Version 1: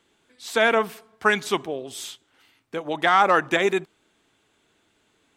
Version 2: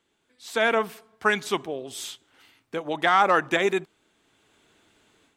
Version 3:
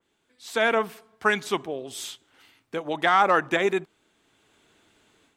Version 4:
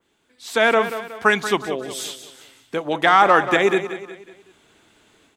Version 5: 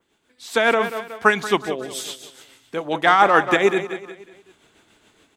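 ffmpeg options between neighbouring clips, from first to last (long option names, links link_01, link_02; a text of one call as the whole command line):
ffmpeg -i in.wav -af "dynaudnorm=framelen=350:gausssize=3:maxgain=11dB,volume=-7dB" out.wav
ffmpeg -i in.wav -af "adynamicequalizer=threshold=0.0141:dfrequency=2500:dqfactor=0.7:tfrequency=2500:tqfactor=0.7:attack=5:release=100:ratio=0.375:range=2:mode=cutabove:tftype=highshelf" out.wav
ffmpeg -i in.wav -af "aecho=1:1:184|368|552|736:0.266|0.114|0.0492|0.0212,volume=5.5dB" out.wav
ffmpeg -i in.wav -af "tremolo=f=7.1:d=0.46,volume=1.5dB" out.wav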